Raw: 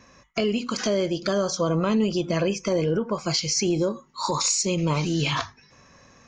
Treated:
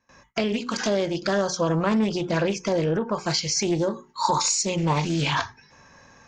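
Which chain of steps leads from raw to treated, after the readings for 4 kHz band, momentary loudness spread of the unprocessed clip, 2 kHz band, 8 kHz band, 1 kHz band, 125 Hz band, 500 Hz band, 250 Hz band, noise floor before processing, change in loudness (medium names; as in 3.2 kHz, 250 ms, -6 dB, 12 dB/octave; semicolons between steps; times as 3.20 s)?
-0.5 dB, 6 LU, +2.5 dB, -0.5 dB, +4.0 dB, 0.0 dB, -0.5 dB, 0.0 dB, -57 dBFS, 0.0 dB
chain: hum notches 60/120/180/240/300/360/420 Hz; gate with hold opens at -44 dBFS; small resonant body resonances 880/1600 Hz, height 10 dB, ringing for 30 ms; loudspeaker Doppler distortion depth 0.23 ms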